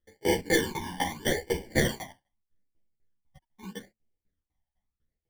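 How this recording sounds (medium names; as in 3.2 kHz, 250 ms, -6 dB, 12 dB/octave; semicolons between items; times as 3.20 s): aliases and images of a low sample rate 1.3 kHz, jitter 0%; phasing stages 12, 0.8 Hz, lowest notch 420–1300 Hz; tremolo saw down 4 Hz, depth 95%; a shimmering, thickened sound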